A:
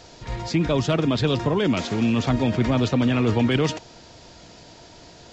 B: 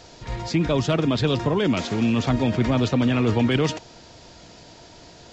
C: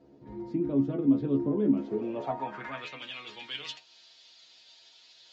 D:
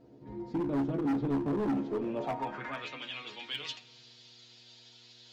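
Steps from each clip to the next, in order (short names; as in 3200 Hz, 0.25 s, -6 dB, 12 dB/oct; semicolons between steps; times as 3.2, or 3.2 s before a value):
nothing audible
band-pass sweep 280 Hz -> 3600 Hz, 1.79–3.12; dynamic EQ 4900 Hz, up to -4 dB, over -48 dBFS, Q 0.76; metallic resonator 68 Hz, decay 0.25 s, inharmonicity 0.002; gain +6 dB
overloaded stage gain 28 dB; buzz 120 Hz, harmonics 4, -66 dBFS -4 dB/oct; shoebox room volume 1900 m³, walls mixed, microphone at 0.37 m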